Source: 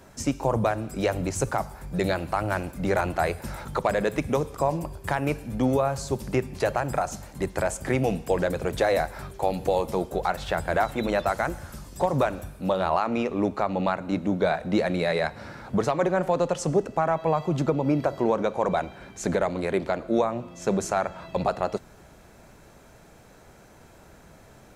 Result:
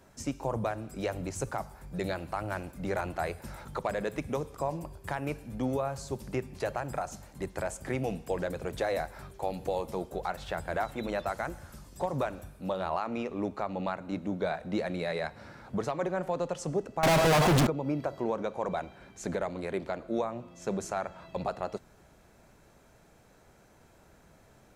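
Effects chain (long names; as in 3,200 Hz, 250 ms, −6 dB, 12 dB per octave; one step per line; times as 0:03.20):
0:17.03–0:17.67: fuzz pedal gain 47 dB, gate −50 dBFS
level −8 dB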